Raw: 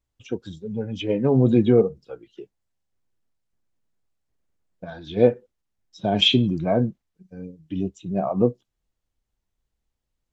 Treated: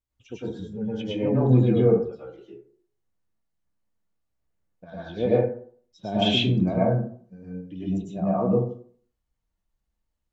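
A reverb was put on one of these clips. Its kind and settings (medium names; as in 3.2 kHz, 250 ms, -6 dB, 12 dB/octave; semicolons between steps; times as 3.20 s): plate-style reverb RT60 0.5 s, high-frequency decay 0.45×, pre-delay 90 ms, DRR -8 dB; trim -10 dB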